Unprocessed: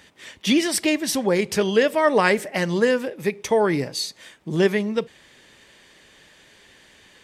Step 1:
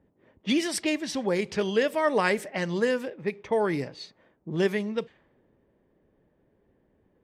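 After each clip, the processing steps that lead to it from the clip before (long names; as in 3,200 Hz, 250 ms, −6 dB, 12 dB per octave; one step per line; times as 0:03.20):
low-pass that shuts in the quiet parts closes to 450 Hz, open at −17 dBFS
level −6 dB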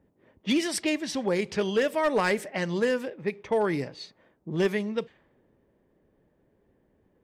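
hard clipping −17 dBFS, distortion −21 dB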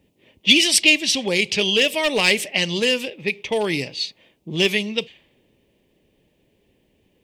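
high shelf with overshoot 2,000 Hz +10.5 dB, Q 3
level +3.5 dB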